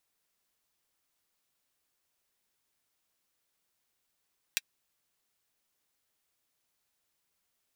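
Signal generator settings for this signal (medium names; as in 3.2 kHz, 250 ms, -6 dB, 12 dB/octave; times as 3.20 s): closed hi-hat, high-pass 2.2 kHz, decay 0.04 s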